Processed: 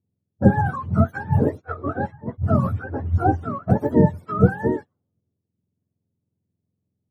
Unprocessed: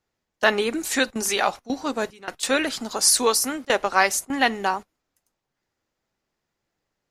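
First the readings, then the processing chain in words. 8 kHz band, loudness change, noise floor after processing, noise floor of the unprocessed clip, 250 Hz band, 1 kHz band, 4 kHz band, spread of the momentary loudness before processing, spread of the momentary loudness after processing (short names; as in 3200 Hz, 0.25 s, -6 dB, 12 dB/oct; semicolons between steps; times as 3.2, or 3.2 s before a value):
under -35 dB, +0.5 dB, -80 dBFS, -82 dBFS, +7.5 dB, -1.5 dB, under -30 dB, 10 LU, 10 LU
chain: spectrum mirrored in octaves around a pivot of 590 Hz; low-pass opened by the level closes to 360 Hz, open at -20 dBFS; gain +2.5 dB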